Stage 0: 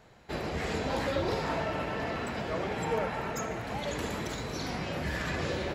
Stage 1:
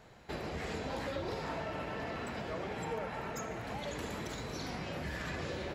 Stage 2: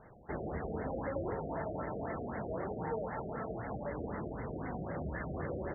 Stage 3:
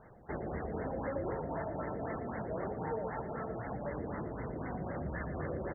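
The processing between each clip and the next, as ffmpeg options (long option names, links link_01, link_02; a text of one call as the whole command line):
ffmpeg -i in.wav -af "acompressor=threshold=-41dB:ratio=2" out.wav
ffmpeg -i in.wav -af "afftfilt=real='re*lt(b*sr/1024,730*pow(2200/730,0.5+0.5*sin(2*PI*3.9*pts/sr)))':imag='im*lt(b*sr/1024,730*pow(2200/730,0.5+0.5*sin(2*PI*3.9*pts/sr)))':win_size=1024:overlap=0.75,volume=1.5dB" out.wav
ffmpeg -i in.wav -af "aecho=1:1:116:0.299" out.wav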